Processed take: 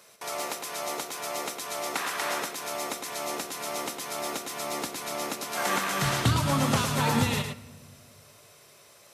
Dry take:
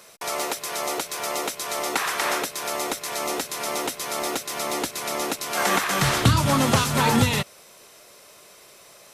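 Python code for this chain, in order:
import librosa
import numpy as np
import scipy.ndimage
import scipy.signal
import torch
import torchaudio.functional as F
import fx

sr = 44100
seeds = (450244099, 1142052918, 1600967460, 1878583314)

y = scipy.signal.sosfilt(scipy.signal.butter(2, 42.0, 'highpass', fs=sr, output='sos'), x)
y = y + 10.0 ** (-6.5 / 20.0) * np.pad(y, (int(108 * sr / 1000.0), 0))[:len(y)]
y = fx.room_shoebox(y, sr, seeds[0], volume_m3=1300.0, walls='mixed', distance_m=0.31)
y = F.gain(torch.from_numpy(y), -6.5).numpy()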